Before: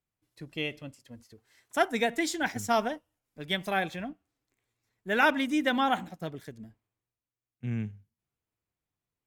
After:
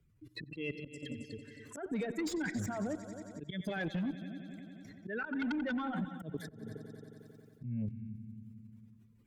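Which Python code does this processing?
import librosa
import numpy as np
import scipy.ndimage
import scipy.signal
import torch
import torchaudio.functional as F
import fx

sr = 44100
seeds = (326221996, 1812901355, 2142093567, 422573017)

p1 = fx.spec_expand(x, sr, power=2.1)
p2 = fx.level_steps(p1, sr, step_db=20)
p3 = p2 + fx.echo_heads(p2, sr, ms=90, heads='all three', feedback_pct=45, wet_db=-19.0, dry=0)
p4 = fx.auto_swell(p3, sr, attack_ms=239.0)
p5 = fx.peak_eq(p4, sr, hz=750.0, db=-13.0, octaves=0.53)
p6 = fx.cheby_harmonics(p5, sr, harmonics=(5, 6, 7, 8), levels_db=(-9, -22, -22, -28), full_scale_db=-29.0)
p7 = fx.band_squash(p6, sr, depth_pct=70)
y = p7 * 10.0 ** (2.5 / 20.0)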